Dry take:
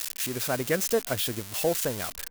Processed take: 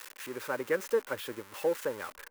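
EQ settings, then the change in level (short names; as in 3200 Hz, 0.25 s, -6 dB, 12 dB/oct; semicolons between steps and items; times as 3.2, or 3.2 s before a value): Butterworth band-stop 690 Hz, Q 3.7; three-band isolator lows -18 dB, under 340 Hz, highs -16 dB, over 2000 Hz; 0.0 dB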